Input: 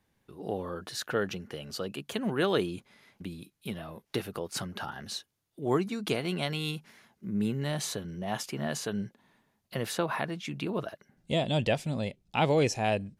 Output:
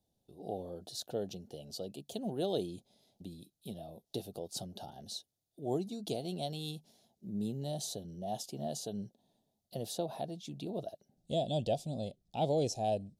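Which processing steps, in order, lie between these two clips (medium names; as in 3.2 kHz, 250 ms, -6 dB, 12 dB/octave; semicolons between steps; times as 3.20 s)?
FFT filter 460 Hz 0 dB, 720 Hz +6 dB, 1.1 kHz -19 dB, 2.1 kHz -22 dB, 3.6 kHz +2 dB; trim -7 dB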